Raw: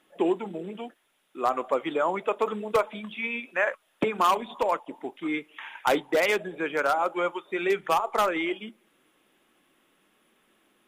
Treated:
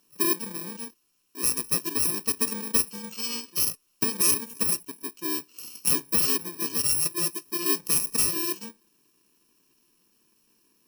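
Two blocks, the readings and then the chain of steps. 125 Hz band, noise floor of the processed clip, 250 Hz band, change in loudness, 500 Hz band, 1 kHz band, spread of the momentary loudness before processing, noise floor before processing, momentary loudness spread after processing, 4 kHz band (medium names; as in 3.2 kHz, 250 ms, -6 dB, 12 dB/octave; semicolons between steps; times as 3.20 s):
+4.5 dB, -69 dBFS, -2.5 dB, +3.0 dB, -11.5 dB, -13.5 dB, 12 LU, -69 dBFS, 12 LU, +7.0 dB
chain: bit-reversed sample order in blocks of 64 samples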